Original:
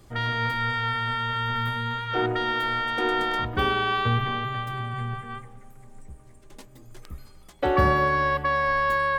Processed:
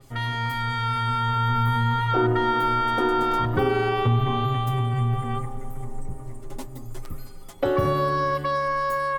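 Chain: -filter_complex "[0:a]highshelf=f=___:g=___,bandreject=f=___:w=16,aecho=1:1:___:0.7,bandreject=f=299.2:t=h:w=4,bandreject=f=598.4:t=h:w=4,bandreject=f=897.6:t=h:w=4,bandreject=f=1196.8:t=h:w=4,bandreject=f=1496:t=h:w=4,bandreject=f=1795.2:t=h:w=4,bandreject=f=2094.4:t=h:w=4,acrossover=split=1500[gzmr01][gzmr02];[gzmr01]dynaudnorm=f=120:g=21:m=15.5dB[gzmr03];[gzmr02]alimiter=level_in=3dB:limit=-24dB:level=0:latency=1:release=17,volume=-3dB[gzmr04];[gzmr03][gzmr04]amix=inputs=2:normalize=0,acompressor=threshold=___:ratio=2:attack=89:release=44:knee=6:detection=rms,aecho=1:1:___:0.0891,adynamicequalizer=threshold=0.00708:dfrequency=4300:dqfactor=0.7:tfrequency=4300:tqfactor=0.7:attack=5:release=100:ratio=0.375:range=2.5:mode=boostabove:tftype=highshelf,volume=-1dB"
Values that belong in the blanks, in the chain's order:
7200, 10.5, 1600, 7.4, -28dB, 457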